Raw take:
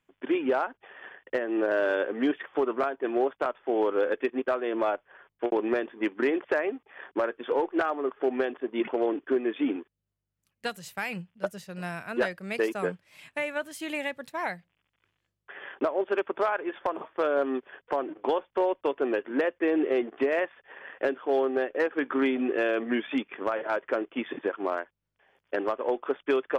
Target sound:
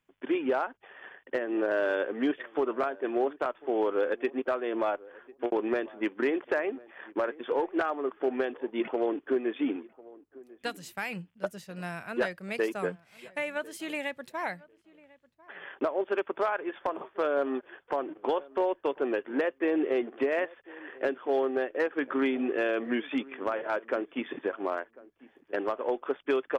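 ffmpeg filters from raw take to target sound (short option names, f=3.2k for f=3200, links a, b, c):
-filter_complex "[0:a]asplit=2[a][b];[b]adelay=1047,lowpass=f=1.2k:p=1,volume=-21dB,asplit=2[c][d];[d]adelay=1047,lowpass=f=1.2k:p=1,volume=0.19[e];[a][c][e]amix=inputs=3:normalize=0,volume=-2dB"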